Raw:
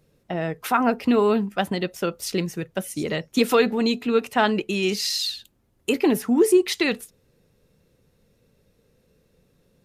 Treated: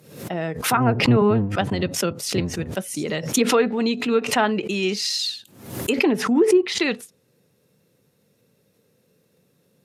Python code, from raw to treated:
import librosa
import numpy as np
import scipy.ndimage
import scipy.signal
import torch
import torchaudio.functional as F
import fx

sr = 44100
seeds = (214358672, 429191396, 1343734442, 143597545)

y = fx.octave_divider(x, sr, octaves=1, level_db=3.0, at=(0.55, 2.72))
y = fx.env_lowpass_down(y, sr, base_hz=2100.0, full_db=-13.5)
y = scipy.signal.sosfilt(scipy.signal.butter(4, 110.0, 'highpass', fs=sr, output='sos'), y)
y = fx.high_shelf(y, sr, hz=8800.0, db=8.0)
y = fx.pre_swell(y, sr, db_per_s=88.0)